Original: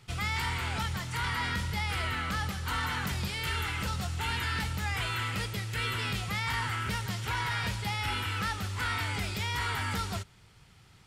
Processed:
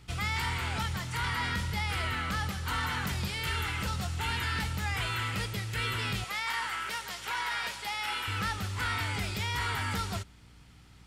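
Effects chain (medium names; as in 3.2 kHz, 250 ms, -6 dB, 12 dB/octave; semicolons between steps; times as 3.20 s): 6.24–8.28 s: high-pass 510 Hz 12 dB/octave; hum 60 Hz, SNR 24 dB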